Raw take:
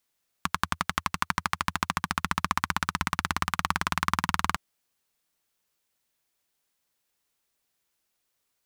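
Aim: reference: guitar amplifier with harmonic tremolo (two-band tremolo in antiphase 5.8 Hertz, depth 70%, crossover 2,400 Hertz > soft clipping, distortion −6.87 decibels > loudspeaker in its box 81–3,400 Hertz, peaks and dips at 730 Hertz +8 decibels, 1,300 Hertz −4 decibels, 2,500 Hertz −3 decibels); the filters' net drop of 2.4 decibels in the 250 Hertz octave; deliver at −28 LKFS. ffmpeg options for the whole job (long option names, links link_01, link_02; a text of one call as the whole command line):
ffmpeg -i in.wav -filter_complex "[0:a]equalizer=frequency=250:width_type=o:gain=-3.5,acrossover=split=2400[link_01][link_02];[link_01]aeval=exprs='val(0)*(1-0.7/2+0.7/2*cos(2*PI*5.8*n/s))':channel_layout=same[link_03];[link_02]aeval=exprs='val(0)*(1-0.7/2-0.7/2*cos(2*PI*5.8*n/s))':channel_layout=same[link_04];[link_03][link_04]amix=inputs=2:normalize=0,asoftclip=threshold=-23dB,highpass=81,equalizer=frequency=730:width_type=q:width=4:gain=8,equalizer=frequency=1300:width_type=q:width=4:gain=-4,equalizer=frequency=2500:width_type=q:width=4:gain=-3,lowpass=frequency=3400:width=0.5412,lowpass=frequency=3400:width=1.3066,volume=12dB" out.wav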